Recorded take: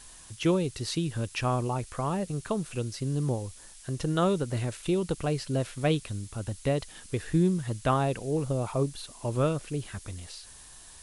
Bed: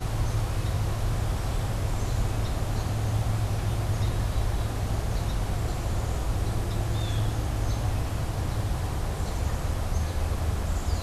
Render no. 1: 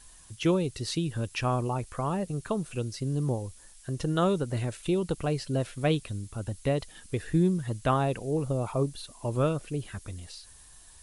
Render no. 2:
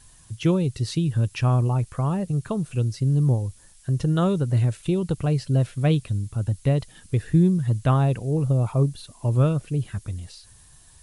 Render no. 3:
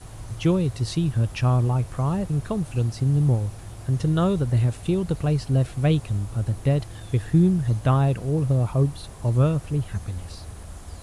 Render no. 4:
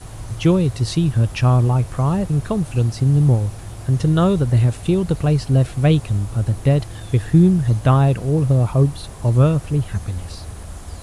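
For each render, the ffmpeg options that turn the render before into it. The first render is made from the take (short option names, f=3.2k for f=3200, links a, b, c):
-af "afftdn=nr=6:nf=-50"
-af "equalizer=f=120:w=0.99:g=11.5"
-filter_complex "[1:a]volume=-11.5dB[a];[0:a][a]amix=inputs=2:normalize=0"
-af "volume=5.5dB"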